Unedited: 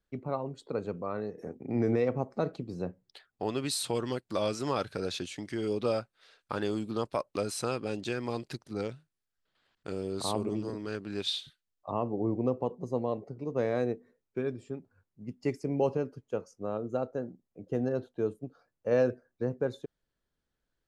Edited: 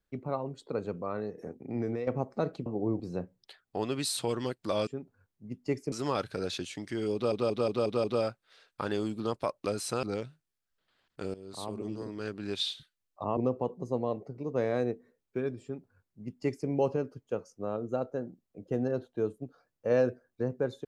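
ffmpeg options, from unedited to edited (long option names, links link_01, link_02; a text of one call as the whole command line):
ffmpeg -i in.wav -filter_complex "[0:a]asplit=14[link_01][link_02][link_03][link_04][link_05][link_06][link_07][link_08][link_09][link_10][link_11][link_12][link_13][link_14];[link_01]atrim=end=2.07,asetpts=PTS-STARTPTS,afade=type=out:start_time=1.36:duration=0.71:silence=0.354813[link_15];[link_02]atrim=start=2.07:end=2.662,asetpts=PTS-STARTPTS,afade=type=in:duration=0.004:curve=hsin:silence=0.354813[link_16];[link_03]atrim=start=12.038:end=12.382[link_17];[link_04]atrim=start=2.658:end=4.532[link_18];[link_05]atrim=start=14.638:end=15.692[link_19];[link_06]atrim=start=4.528:end=5.932[link_20];[link_07]atrim=start=5.748:end=5.932[link_21];[link_08]atrim=start=5.748:end=5.932[link_22];[link_09]atrim=start=5.748:end=5.932[link_23];[link_10]atrim=start=5.748:end=5.932[link_24];[link_11]atrim=start=5.748:end=7.742[link_25];[link_12]atrim=start=8.698:end=10.01,asetpts=PTS-STARTPTS,afade=type=out:start_time=1.308:duration=0.004:curve=hsin:silence=0.177828[link_26];[link_13]atrim=start=10.01:end=12.042,asetpts=PTS-STARTPTS,afade=type=in:duration=0.99:silence=0.177828[link_27];[link_14]atrim=start=12.378[link_28];[link_15][link_16]concat=n=2:v=0:a=1[link_29];[link_29][link_17]acrossfade=duration=0.004:curve1=hsin:curve2=hsin[link_30];[link_30][link_18]acrossfade=duration=0.004:curve1=hsin:curve2=hsin[link_31];[link_31][link_19]acrossfade=duration=0.004:curve1=hsin:curve2=hsin[link_32];[link_32][link_20]acrossfade=duration=0.004:curve1=hsin:curve2=hsin[link_33];[link_33][link_21]acrossfade=duration=0.004:curve1=hsin:curve2=hsin[link_34];[link_34][link_22]acrossfade=duration=0.004:curve1=hsin:curve2=hsin[link_35];[link_35][link_23]acrossfade=duration=0.004:curve1=hsin:curve2=hsin[link_36];[link_36][link_24]acrossfade=duration=0.004:curve1=hsin:curve2=hsin[link_37];[link_37][link_25]acrossfade=duration=0.004:curve1=hsin:curve2=hsin[link_38];[link_26][link_27]concat=n=2:v=0:a=1[link_39];[link_38][link_39]acrossfade=duration=0.004:curve1=hsin:curve2=hsin[link_40];[link_40][link_28]acrossfade=duration=0.004:curve1=hsin:curve2=hsin" out.wav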